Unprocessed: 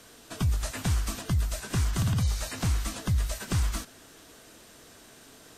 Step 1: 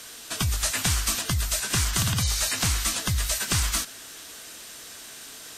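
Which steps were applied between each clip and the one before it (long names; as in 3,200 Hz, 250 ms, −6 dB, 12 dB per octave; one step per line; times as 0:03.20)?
tilt shelving filter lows −7 dB, about 1,100 Hz
level +6 dB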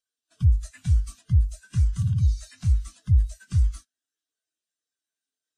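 every bin expanded away from the loudest bin 2.5 to 1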